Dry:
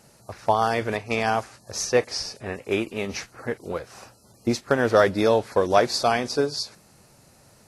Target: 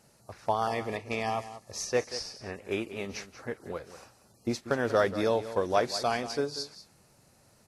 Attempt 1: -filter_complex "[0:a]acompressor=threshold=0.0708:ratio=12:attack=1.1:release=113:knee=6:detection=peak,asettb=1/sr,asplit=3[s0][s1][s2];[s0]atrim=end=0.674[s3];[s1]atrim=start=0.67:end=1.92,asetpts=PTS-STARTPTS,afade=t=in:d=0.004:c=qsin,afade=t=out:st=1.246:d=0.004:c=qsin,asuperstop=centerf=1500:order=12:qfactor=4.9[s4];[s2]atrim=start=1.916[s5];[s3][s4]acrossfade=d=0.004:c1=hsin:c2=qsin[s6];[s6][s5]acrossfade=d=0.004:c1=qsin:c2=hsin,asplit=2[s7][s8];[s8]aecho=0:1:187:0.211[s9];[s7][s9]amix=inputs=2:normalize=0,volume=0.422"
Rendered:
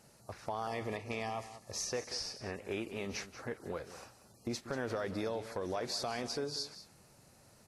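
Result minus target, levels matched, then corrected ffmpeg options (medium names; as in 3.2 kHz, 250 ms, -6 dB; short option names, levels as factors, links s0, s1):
compression: peak gain reduction +15 dB
-filter_complex "[0:a]asettb=1/sr,asplit=3[s0][s1][s2];[s0]atrim=end=0.674[s3];[s1]atrim=start=0.67:end=1.92,asetpts=PTS-STARTPTS,afade=t=in:d=0.004:c=qsin,afade=t=out:st=1.246:d=0.004:c=qsin,asuperstop=centerf=1500:order=12:qfactor=4.9[s4];[s2]atrim=start=1.916[s5];[s3][s4]acrossfade=d=0.004:c1=hsin:c2=qsin[s6];[s6][s5]acrossfade=d=0.004:c1=qsin:c2=hsin,asplit=2[s7][s8];[s8]aecho=0:1:187:0.211[s9];[s7][s9]amix=inputs=2:normalize=0,volume=0.422"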